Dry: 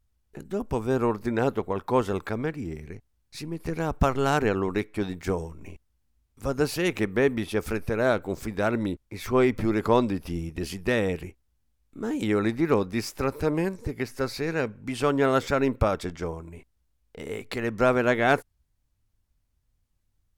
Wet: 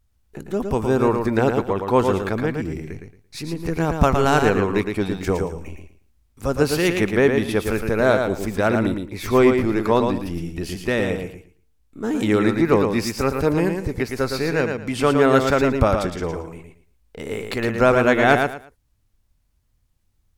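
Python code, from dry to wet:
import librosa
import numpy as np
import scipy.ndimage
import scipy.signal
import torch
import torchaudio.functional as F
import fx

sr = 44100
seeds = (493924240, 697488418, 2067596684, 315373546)

y = fx.comb_fb(x, sr, f0_hz=150.0, decay_s=0.63, harmonics='all', damping=0.0, mix_pct=30, at=(9.54, 12.04))
y = fx.echo_feedback(y, sr, ms=113, feedback_pct=22, wet_db=-5.5)
y = y * librosa.db_to_amplitude(5.5)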